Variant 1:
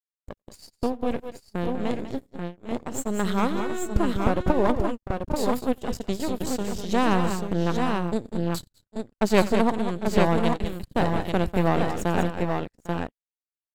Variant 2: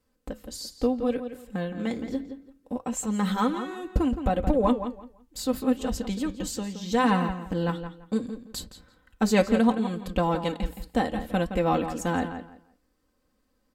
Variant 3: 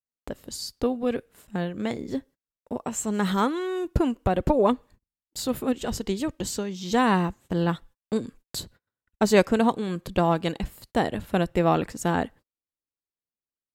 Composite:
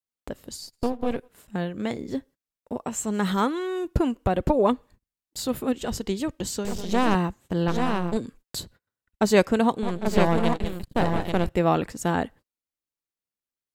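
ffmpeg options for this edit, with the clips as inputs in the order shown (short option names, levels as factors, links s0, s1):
-filter_complex "[0:a]asplit=4[s0][s1][s2][s3];[2:a]asplit=5[s4][s5][s6][s7][s8];[s4]atrim=end=0.73[s9];[s0]atrim=start=0.49:end=1.29[s10];[s5]atrim=start=1.05:end=6.652[s11];[s1]atrim=start=6.648:end=7.152[s12];[s6]atrim=start=7.148:end=7.682[s13];[s2]atrim=start=7.678:end=8.172[s14];[s7]atrim=start=8.168:end=9.832[s15];[s3]atrim=start=9.828:end=11.492[s16];[s8]atrim=start=11.488[s17];[s9][s10]acrossfade=d=0.24:c1=tri:c2=tri[s18];[s18][s11]acrossfade=d=0.24:c1=tri:c2=tri[s19];[s19][s12]acrossfade=d=0.004:c1=hsin:c2=hsin[s20];[s20][s13]acrossfade=d=0.004:c1=hsin:c2=hsin[s21];[s21][s14]acrossfade=d=0.004:c1=hsin:c2=hsin[s22];[s22][s15]acrossfade=d=0.004:c1=hsin:c2=hsin[s23];[s23][s16]acrossfade=d=0.004:c1=hsin:c2=hsin[s24];[s24][s17]acrossfade=d=0.004:c1=hsin:c2=hsin"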